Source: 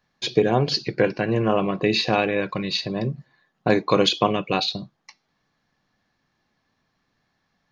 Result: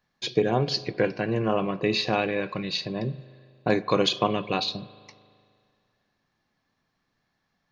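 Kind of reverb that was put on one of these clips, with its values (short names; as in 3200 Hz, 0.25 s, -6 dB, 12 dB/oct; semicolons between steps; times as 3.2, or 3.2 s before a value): spring tank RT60 2.2 s, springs 38 ms, chirp 40 ms, DRR 17.5 dB; gain -4 dB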